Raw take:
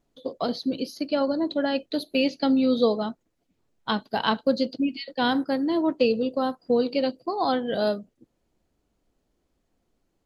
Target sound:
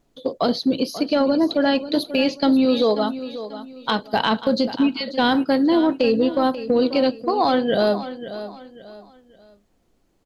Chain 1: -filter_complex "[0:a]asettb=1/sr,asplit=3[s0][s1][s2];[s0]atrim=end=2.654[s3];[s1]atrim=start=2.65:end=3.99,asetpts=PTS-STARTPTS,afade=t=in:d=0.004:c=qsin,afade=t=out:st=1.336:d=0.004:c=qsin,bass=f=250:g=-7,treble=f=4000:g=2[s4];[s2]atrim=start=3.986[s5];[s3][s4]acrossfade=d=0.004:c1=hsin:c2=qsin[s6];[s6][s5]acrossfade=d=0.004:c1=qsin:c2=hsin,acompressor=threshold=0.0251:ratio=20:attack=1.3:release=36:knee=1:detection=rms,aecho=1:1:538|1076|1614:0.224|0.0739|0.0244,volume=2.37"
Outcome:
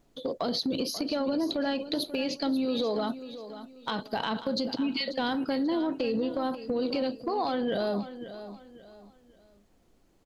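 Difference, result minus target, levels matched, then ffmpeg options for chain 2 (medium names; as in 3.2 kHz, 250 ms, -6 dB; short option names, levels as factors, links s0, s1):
compression: peak gain reduction +11.5 dB
-filter_complex "[0:a]asettb=1/sr,asplit=3[s0][s1][s2];[s0]atrim=end=2.654[s3];[s1]atrim=start=2.65:end=3.99,asetpts=PTS-STARTPTS,afade=t=in:d=0.004:c=qsin,afade=t=out:st=1.336:d=0.004:c=qsin,bass=f=250:g=-7,treble=f=4000:g=2[s4];[s2]atrim=start=3.986[s5];[s3][s4]acrossfade=d=0.004:c1=hsin:c2=qsin[s6];[s6][s5]acrossfade=d=0.004:c1=qsin:c2=hsin,acompressor=threshold=0.1:ratio=20:attack=1.3:release=36:knee=1:detection=rms,aecho=1:1:538|1076|1614:0.224|0.0739|0.0244,volume=2.37"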